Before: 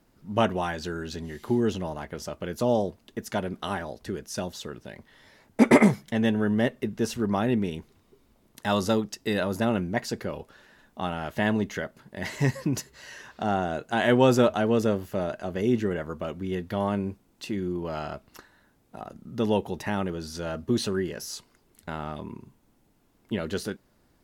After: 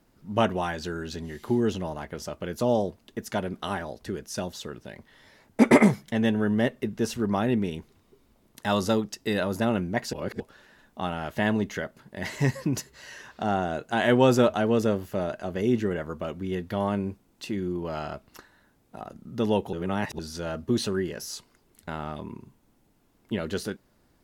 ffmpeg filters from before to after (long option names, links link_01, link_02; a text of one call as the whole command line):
ffmpeg -i in.wav -filter_complex "[0:a]asplit=5[link_01][link_02][link_03][link_04][link_05];[link_01]atrim=end=10.132[link_06];[link_02]atrim=start=10.128:end=10.402,asetpts=PTS-STARTPTS,areverse[link_07];[link_03]atrim=start=10.398:end=19.732[link_08];[link_04]atrim=start=19.728:end=20.192,asetpts=PTS-STARTPTS,areverse[link_09];[link_05]atrim=start=20.188[link_10];[link_06][link_07]acrossfade=duration=0.004:curve1=hsin:curve2=hsin[link_11];[link_11][link_08]acrossfade=duration=0.004:curve1=hsin:curve2=hsin[link_12];[link_12][link_09]acrossfade=duration=0.004:curve1=hsin:curve2=hsin[link_13];[link_13][link_10]acrossfade=duration=0.004:curve1=hsin:curve2=hsin" out.wav